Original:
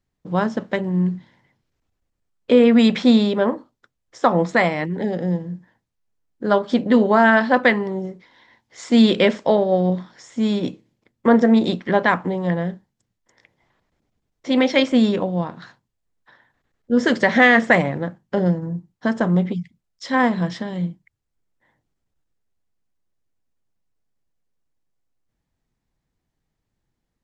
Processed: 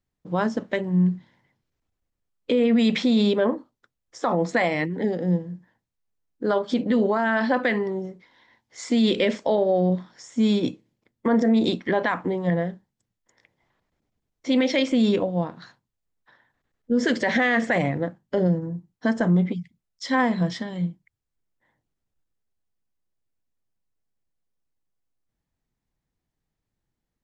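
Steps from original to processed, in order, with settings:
noise reduction from a noise print of the clip's start 6 dB
brickwall limiter −13.5 dBFS, peak gain reduction 11 dB
level +1 dB

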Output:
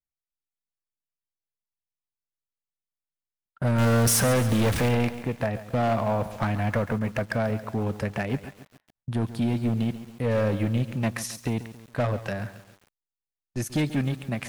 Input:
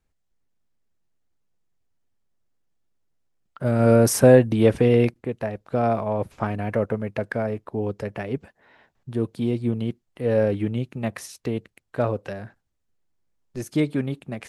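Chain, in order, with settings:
0:03.78–0:04.89: converter with a step at zero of −26.5 dBFS
noise gate −42 dBFS, range −29 dB
parametric band 410 Hz −8.5 dB 1 octave
in parallel at −1.5 dB: downward compressor, threshold −28 dBFS, peak gain reduction 15 dB
on the sum: hard clipping −19.5 dBFS, distortion −8 dB
feedback echo at a low word length 138 ms, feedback 55%, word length 7 bits, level −13 dB

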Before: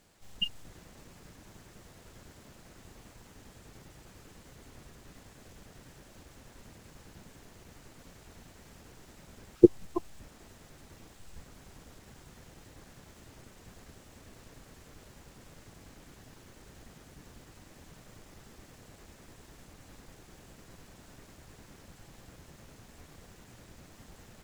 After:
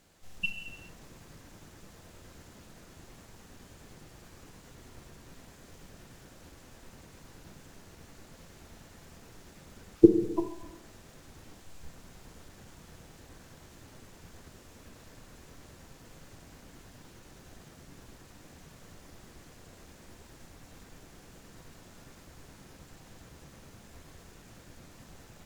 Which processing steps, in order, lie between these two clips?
reverb whose tail is shaped and stops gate 430 ms falling, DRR 5.5 dB
wrong playback speed 25 fps video run at 24 fps

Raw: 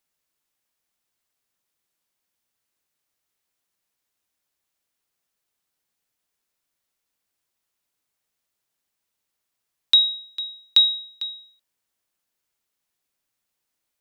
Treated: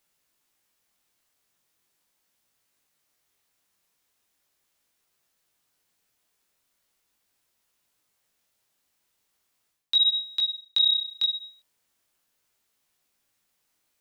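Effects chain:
chorus effect 0.39 Hz, delay 17.5 ms, depth 7 ms
reversed playback
downward compressor 10 to 1, threshold −28 dBFS, peak gain reduction 15.5 dB
reversed playback
level +9 dB

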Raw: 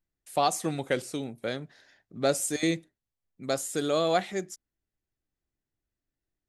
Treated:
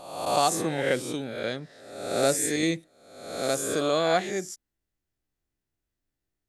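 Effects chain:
peak hold with a rise ahead of every peak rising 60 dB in 0.90 s

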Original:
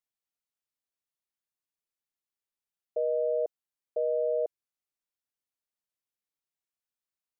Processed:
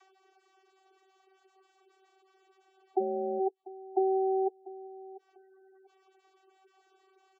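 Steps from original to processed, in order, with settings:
in parallel at −4 dB: soft clipping −37 dBFS, distortion −7 dB
on the sum: upward compression, threshold −49 dBFS
channel vocoder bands 32, saw 382 Hz
reverb reduction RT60 0.6 s
on a send: repeating echo 694 ms, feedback 24%, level −18.5 dB
0:03.00–0:03.40: on the sum: amplitude modulation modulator 170 Hz, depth 90%
gate on every frequency bin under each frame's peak −15 dB strong
parametric band 670 Hz +10 dB 2.7 octaves
level −5 dB

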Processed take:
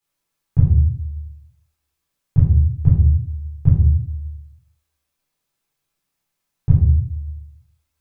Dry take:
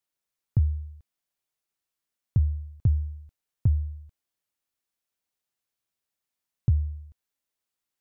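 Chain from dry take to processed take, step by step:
in parallel at −11 dB: hard clipping −27.5 dBFS, distortion −5 dB
on the sum: convolution reverb RT60 0.60 s, pre-delay 13 ms, DRR −7.5 dB
level −1.5 dB

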